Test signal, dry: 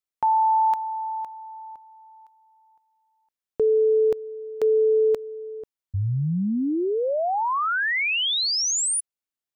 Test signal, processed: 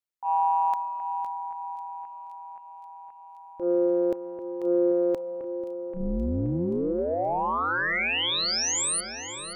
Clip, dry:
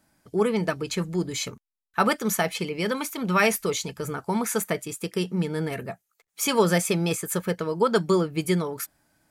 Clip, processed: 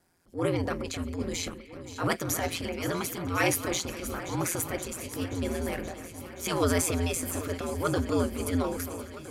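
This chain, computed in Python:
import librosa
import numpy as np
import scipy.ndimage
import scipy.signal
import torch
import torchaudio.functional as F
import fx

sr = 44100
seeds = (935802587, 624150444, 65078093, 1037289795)

y = x * np.sin(2.0 * np.pi * 86.0 * np.arange(len(x)) / sr)
y = fx.transient(y, sr, attack_db=-12, sustain_db=4)
y = fx.echo_alternate(y, sr, ms=263, hz=2300.0, feedback_pct=87, wet_db=-12.0)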